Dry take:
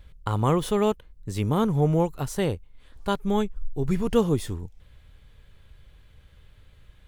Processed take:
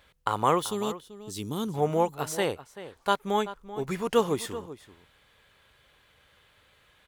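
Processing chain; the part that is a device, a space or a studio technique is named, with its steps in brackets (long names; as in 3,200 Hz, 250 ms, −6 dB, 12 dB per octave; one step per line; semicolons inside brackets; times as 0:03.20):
0:00.62–0:01.74: flat-topped bell 1,100 Hz −15 dB 2.7 octaves
filter by subtraction (in parallel: low-pass filter 950 Hz 12 dB per octave + polarity inversion)
on the sum: slap from a distant wall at 66 metres, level −14 dB
level +2 dB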